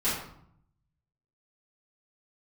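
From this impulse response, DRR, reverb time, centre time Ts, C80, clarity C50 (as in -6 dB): -13.0 dB, 0.65 s, 53 ms, 5.5 dB, 2.0 dB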